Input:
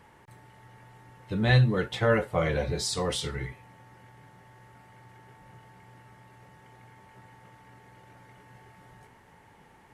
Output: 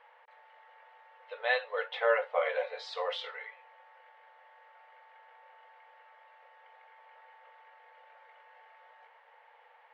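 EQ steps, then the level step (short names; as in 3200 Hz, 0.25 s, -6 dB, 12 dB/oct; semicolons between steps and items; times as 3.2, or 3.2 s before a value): brick-wall FIR high-pass 450 Hz; LPF 3400 Hz 24 dB/oct; -1.5 dB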